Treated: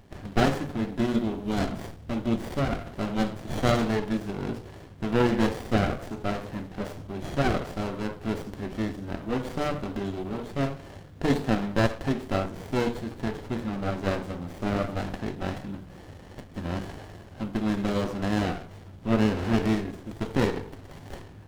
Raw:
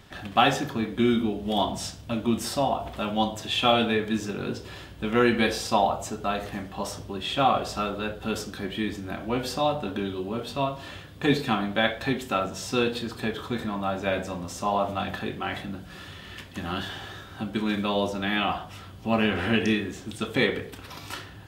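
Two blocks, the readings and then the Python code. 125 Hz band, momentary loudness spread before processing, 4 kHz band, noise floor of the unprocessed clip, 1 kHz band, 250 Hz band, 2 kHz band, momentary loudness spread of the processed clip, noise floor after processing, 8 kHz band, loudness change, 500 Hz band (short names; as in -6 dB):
+4.0 dB, 13 LU, -9.0 dB, -44 dBFS, -6.0 dB, 0.0 dB, -5.0 dB, 13 LU, -46 dBFS, -7.0 dB, -2.0 dB, -2.0 dB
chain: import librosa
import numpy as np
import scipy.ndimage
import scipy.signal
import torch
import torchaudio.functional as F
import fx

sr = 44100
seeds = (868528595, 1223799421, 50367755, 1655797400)

y = fx.hum_notches(x, sr, base_hz=60, count=7)
y = fx.running_max(y, sr, window=33)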